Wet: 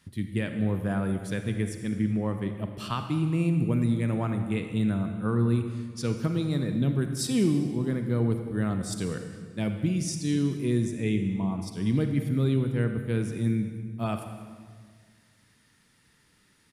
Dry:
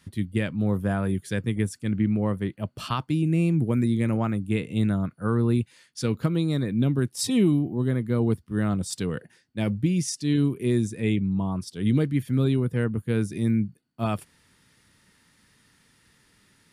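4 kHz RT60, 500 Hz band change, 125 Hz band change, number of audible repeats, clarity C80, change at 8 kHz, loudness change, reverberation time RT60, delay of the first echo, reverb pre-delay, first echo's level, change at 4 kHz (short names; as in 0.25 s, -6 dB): 1.4 s, -2.5 dB, -2.0 dB, 1, 8.0 dB, -2.5 dB, -2.5 dB, 1.7 s, 0.192 s, 37 ms, -18.5 dB, -3.0 dB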